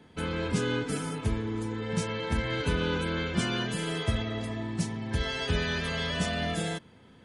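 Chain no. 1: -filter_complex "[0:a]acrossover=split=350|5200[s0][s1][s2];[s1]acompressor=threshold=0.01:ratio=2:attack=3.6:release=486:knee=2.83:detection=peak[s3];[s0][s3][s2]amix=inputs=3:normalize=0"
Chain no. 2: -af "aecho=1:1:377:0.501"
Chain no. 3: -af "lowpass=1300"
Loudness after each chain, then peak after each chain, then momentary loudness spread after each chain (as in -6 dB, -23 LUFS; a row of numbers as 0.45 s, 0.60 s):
-33.0 LUFS, -30.0 LUFS, -32.5 LUFS; -16.0 dBFS, -14.0 dBFS, -15.5 dBFS; 4 LU, 4 LU, 4 LU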